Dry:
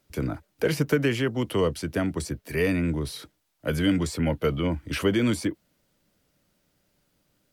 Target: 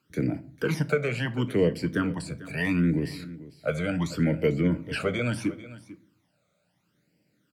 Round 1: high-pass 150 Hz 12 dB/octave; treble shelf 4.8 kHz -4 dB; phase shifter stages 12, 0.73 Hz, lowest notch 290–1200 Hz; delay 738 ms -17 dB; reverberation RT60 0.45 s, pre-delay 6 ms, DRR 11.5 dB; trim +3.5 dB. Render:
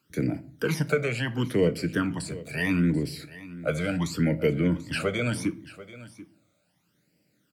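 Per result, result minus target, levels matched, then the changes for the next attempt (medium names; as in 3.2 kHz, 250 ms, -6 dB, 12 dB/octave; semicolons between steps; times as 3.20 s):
echo 292 ms late; 8 kHz band +4.5 dB
change: delay 446 ms -17 dB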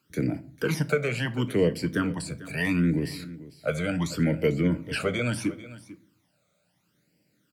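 8 kHz band +4.5 dB
change: treble shelf 4.8 kHz -10.5 dB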